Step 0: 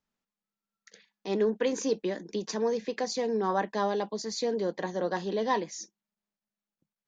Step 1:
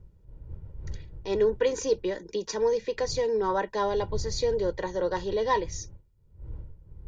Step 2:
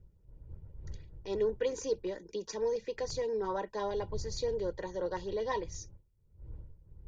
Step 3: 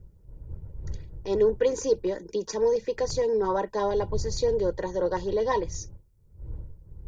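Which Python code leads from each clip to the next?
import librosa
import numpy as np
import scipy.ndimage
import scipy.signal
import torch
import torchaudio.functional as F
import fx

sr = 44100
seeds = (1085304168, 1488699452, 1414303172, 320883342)

y1 = fx.dmg_wind(x, sr, seeds[0], corner_hz=91.0, level_db=-43.0)
y1 = y1 + 0.62 * np.pad(y1, (int(2.1 * sr / 1000.0), 0))[:len(y1)]
y2 = fx.filter_lfo_notch(y1, sr, shape='saw_up', hz=8.7, low_hz=890.0, high_hz=4300.0, q=1.9)
y2 = y2 * 10.0 ** (-7.0 / 20.0)
y3 = fx.peak_eq(y2, sr, hz=2900.0, db=-5.5, octaves=1.5)
y3 = y3 * 10.0 ** (9.0 / 20.0)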